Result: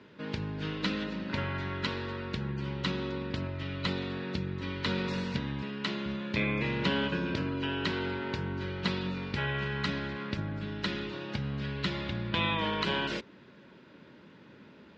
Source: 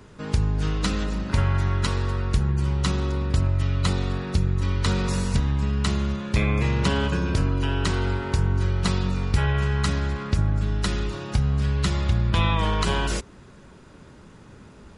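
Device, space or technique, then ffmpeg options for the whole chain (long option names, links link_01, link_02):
kitchen radio: -filter_complex "[0:a]asettb=1/sr,asplit=3[link_01][link_02][link_03];[link_01]atrim=end=5.624[link_04];[link_02]atrim=start=5.62:end=6.06,asetpts=PTS-STARTPTS,afade=type=in:duration=0.004:curve=qsin,afade=type=out:start_time=0.436:duration=0.004:curve=qsin,highpass=210[link_05];[link_03]atrim=start=6.056[link_06];[link_04][link_05]acrossfade=duration=0.004:curve1=hsin:curve2=qsin[link_07];[link_07][link_06]acrossfade=duration=0.004:curve1=qsin:curve2=hsin,highpass=220,equalizer=frequency=420:width_type=q:width=4:gain=-4,equalizer=frequency=750:width_type=q:width=4:gain=-9,equalizer=frequency=1200:width_type=q:width=4:gain=-8,lowpass=frequency=4100:width=0.5412,lowpass=frequency=4100:width=1.3066,volume=-1.5dB"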